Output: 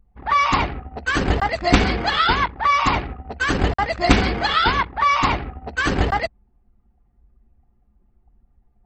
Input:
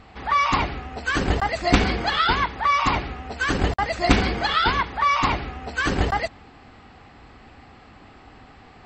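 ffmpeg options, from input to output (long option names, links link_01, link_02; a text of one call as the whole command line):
ffmpeg -i in.wav -af "anlmdn=25.1,volume=2.5dB" out.wav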